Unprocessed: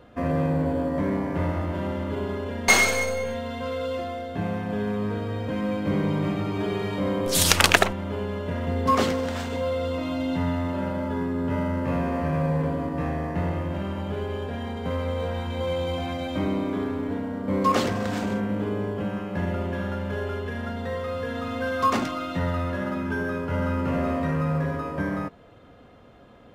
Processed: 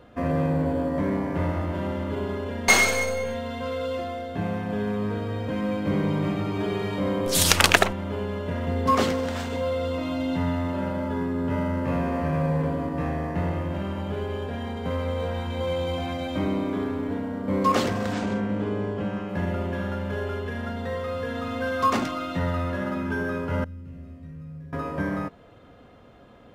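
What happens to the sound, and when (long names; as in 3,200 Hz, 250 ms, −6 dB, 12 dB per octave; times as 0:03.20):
0:18.13–0:19.29: low-pass filter 7,900 Hz
0:23.64–0:24.73: guitar amp tone stack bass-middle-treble 10-0-1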